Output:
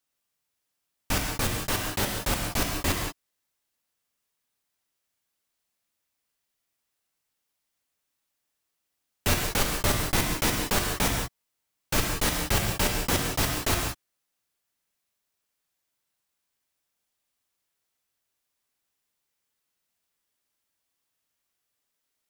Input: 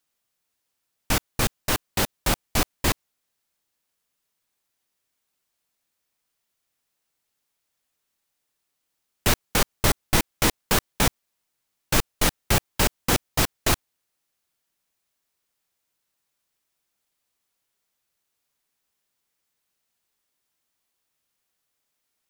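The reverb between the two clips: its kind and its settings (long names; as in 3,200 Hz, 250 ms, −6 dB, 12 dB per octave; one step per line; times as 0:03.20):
reverb whose tail is shaped and stops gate 210 ms flat, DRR 0.5 dB
level −5 dB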